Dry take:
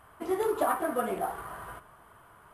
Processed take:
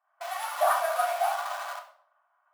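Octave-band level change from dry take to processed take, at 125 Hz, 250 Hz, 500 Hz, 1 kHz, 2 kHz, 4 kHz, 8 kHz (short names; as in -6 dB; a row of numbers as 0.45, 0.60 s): under -40 dB, under -40 dB, -0.5 dB, +5.5 dB, +6.0 dB, +11.0 dB, +5.5 dB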